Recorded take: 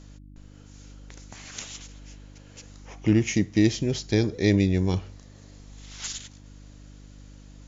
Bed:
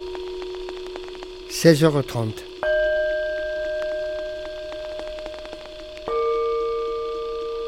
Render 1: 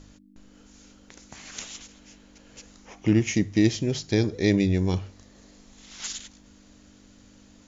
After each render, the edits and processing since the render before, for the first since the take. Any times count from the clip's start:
hum removal 50 Hz, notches 3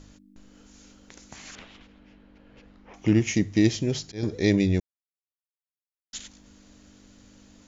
0:01.55–0:02.94: high-frequency loss of the air 400 metres
0:03.57–0:04.23: volume swells 262 ms
0:04.80–0:06.13: silence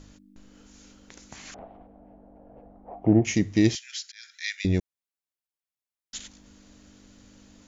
0:01.54–0:03.25: low-pass with resonance 710 Hz, resonance Q 6.3
0:03.75–0:04.65: Butterworth high-pass 1,400 Hz 96 dB per octave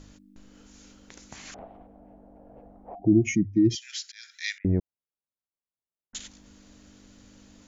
0:02.95–0:03.82: expanding power law on the bin magnitudes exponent 2.1
0:04.58–0:06.15: Gaussian smoothing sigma 6.7 samples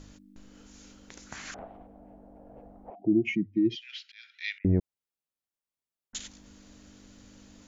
0:01.25–0:01.74: parametric band 1,500 Hz +12 dB → +2.5 dB
0:02.90–0:04.64: loudspeaker in its box 240–3,400 Hz, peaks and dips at 290 Hz −4 dB, 510 Hz −5 dB, 770 Hz −9 dB, 1,100 Hz −5 dB, 1,700 Hz −7 dB, 2,800 Hz +4 dB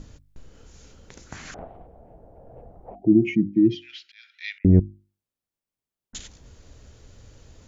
low-shelf EQ 440 Hz +11.5 dB
mains-hum notches 50/100/150/200/250/300/350 Hz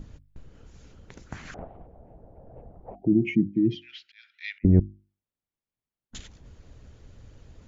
bass and treble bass +4 dB, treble −8 dB
harmonic and percussive parts rebalanced harmonic −7 dB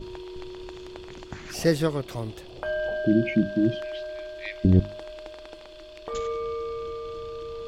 mix in bed −8 dB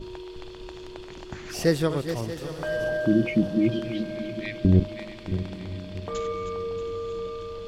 feedback delay that plays each chunk backwards 316 ms, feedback 58%, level −9.5 dB
feedback delay with all-pass diffusion 918 ms, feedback 43%, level −15 dB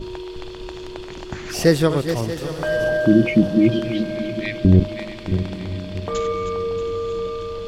level +7 dB
brickwall limiter −3 dBFS, peak gain reduction 2.5 dB

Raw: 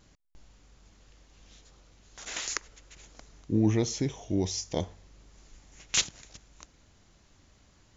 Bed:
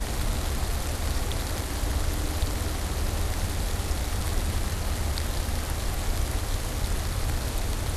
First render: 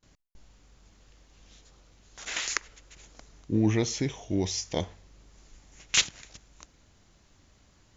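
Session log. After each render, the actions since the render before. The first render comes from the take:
noise gate with hold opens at −52 dBFS
dynamic equaliser 2,200 Hz, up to +6 dB, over −50 dBFS, Q 0.71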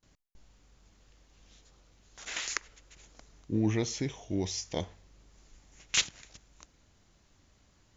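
level −4 dB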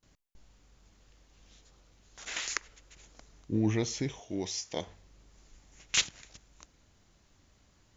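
0:04.20–0:04.87: high-pass filter 280 Hz 6 dB per octave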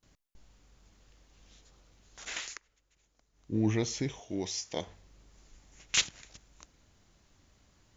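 0:02.31–0:03.61: duck −16 dB, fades 0.28 s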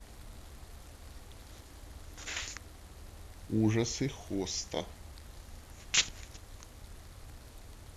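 mix in bed −22 dB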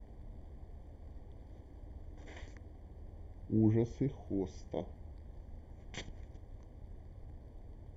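moving average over 33 samples

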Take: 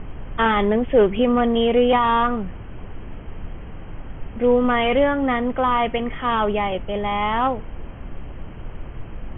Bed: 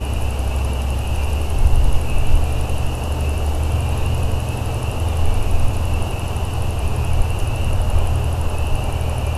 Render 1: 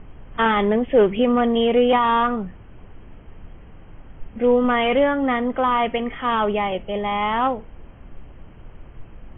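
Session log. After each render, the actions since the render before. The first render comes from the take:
noise reduction from a noise print 8 dB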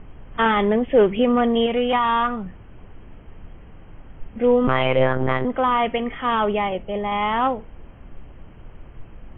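0:01.66–0:02.46: parametric band 380 Hz −6.5 dB 1.5 octaves
0:04.67–0:05.45: one-pitch LPC vocoder at 8 kHz 130 Hz
0:06.69–0:07.12: high-frequency loss of the air 240 metres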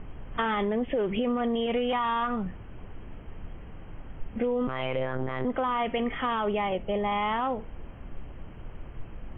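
brickwall limiter −15 dBFS, peak gain reduction 11 dB
downward compressor, threshold −24 dBFS, peak gain reduction 6 dB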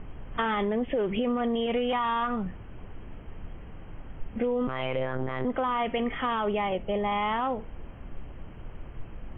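no processing that can be heard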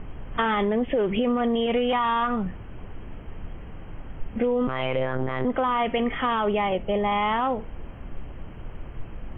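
level +4 dB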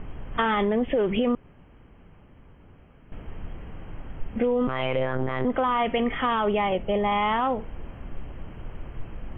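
0:01.35–0:03.12: fill with room tone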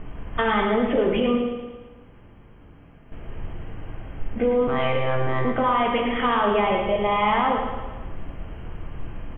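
repeating echo 112 ms, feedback 53%, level −7 dB
coupled-rooms reverb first 0.79 s, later 2.4 s, from −26 dB, DRR 1.5 dB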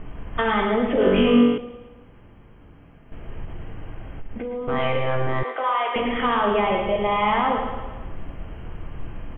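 0:00.98–0:01.58: flutter between parallel walls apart 3.6 metres, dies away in 1.1 s
0:03.44–0:04.68: downward compressor, threshold −27 dBFS
0:05.43–0:05.96: Bessel high-pass filter 610 Hz, order 8

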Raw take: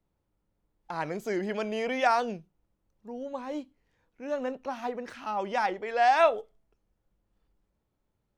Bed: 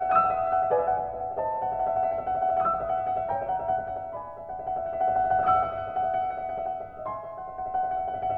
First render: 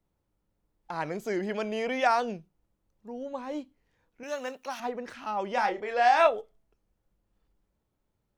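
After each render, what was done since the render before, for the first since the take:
0:04.23–0:04.80: spectral tilt +4 dB per octave
0:05.54–0:06.27: double-tracking delay 29 ms −7 dB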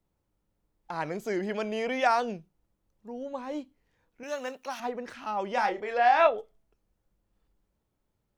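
0:05.97–0:06.37: low-pass filter 3,100 Hz → 4,800 Hz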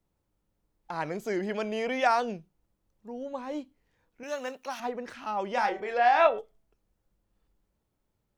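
0:05.54–0:06.39: hum removal 190 Hz, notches 17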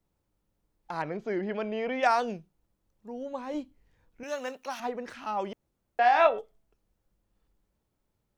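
0:01.02–0:02.03: high-frequency loss of the air 240 metres
0:03.54–0:04.24: low-shelf EQ 130 Hz +10.5 dB
0:05.53–0:05.99: fill with room tone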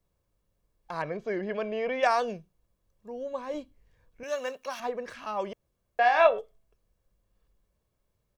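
comb filter 1.8 ms, depth 43%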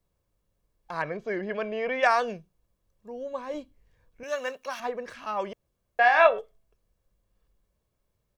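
dynamic equaliser 1,700 Hz, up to +6 dB, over −41 dBFS, Q 1.1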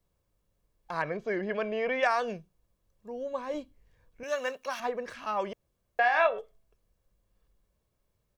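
downward compressor 2 to 1, threshold −25 dBFS, peak gain reduction 7 dB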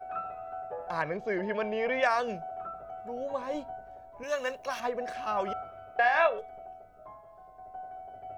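mix in bed −15 dB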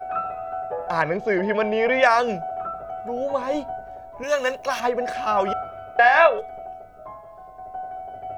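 level +9.5 dB

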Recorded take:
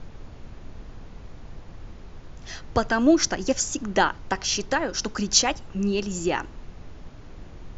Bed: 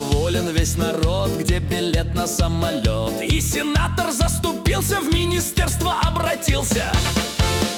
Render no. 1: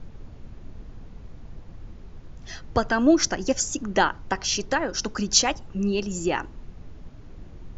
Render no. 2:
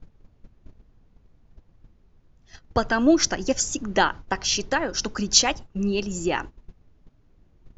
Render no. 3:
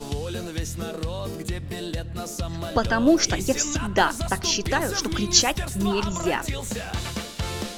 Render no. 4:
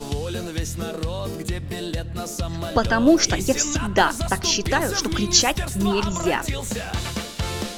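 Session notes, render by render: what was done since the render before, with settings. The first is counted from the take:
broadband denoise 6 dB, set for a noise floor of −43 dBFS
noise gate −34 dBFS, range −16 dB; dynamic equaliser 3,500 Hz, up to +3 dB, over −34 dBFS, Q 0.9
mix in bed −10.5 dB
level +2.5 dB; brickwall limiter −3 dBFS, peak gain reduction 3 dB

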